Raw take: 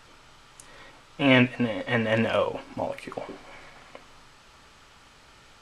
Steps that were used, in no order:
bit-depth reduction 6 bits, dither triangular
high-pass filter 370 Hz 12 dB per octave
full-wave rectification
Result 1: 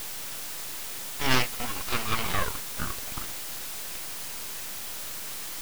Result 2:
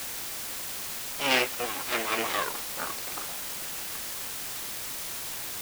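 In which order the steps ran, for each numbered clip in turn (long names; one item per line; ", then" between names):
high-pass filter, then bit-depth reduction, then full-wave rectification
full-wave rectification, then high-pass filter, then bit-depth reduction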